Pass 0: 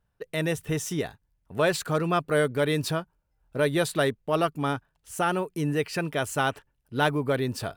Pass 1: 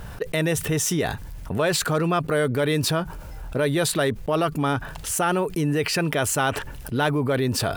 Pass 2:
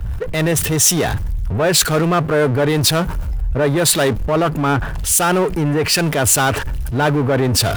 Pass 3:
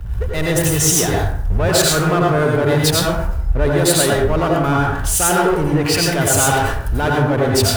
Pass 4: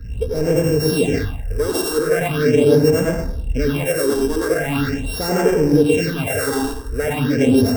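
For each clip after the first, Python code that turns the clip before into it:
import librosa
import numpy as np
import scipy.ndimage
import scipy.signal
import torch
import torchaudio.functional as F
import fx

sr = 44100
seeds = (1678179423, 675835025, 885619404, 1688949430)

y1 = fx.env_flatten(x, sr, amount_pct=70)
y2 = fx.peak_eq(y1, sr, hz=69.0, db=6.0, octaves=1.5)
y2 = fx.power_curve(y2, sr, exponent=0.5)
y2 = fx.band_widen(y2, sr, depth_pct=100)
y2 = y2 * 10.0 ** (1.0 / 20.0)
y3 = fx.rev_plate(y2, sr, seeds[0], rt60_s=0.62, hf_ratio=0.55, predelay_ms=75, drr_db=-2.5)
y3 = y3 * 10.0 ** (-4.0 / 20.0)
y4 = np.r_[np.sort(y3[:len(y3) // 16 * 16].reshape(-1, 16), axis=1).ravel(), y3[len(y3) // 16 * 16:]]
y4 = fx.phaser_stages(y4, sr, stages=6, low_hz=150.0, high_hz=3800.0, hz=0.41, feedback_pct=25)
y4 = fx.small_body(y4, sr, hz=(260.0, 450.0, 1600.0, 3800.0), ring_ms=50, db=16)
y4 = y4 * 10.0 ** (-6.5 / 20.0)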